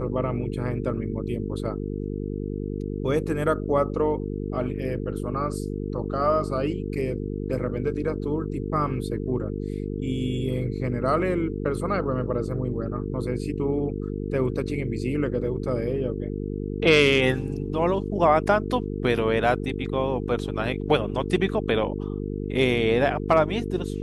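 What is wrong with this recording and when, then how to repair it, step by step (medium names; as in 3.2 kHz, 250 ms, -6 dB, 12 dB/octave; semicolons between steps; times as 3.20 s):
buzz 50 Hz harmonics 9 -30 dBFS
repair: de-hum 50 Hz, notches 9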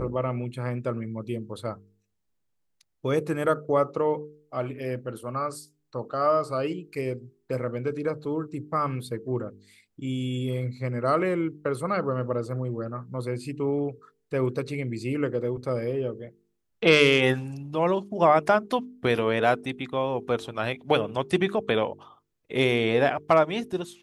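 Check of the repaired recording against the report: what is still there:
nothing left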